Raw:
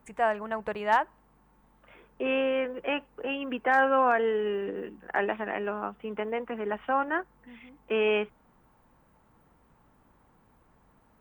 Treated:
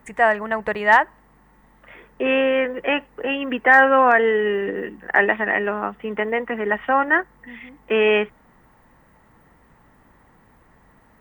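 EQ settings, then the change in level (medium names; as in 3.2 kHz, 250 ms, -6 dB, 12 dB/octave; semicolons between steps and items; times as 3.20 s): peaking EQ 1.9 kHz +12 dB 0.21 oct; +8.0 dB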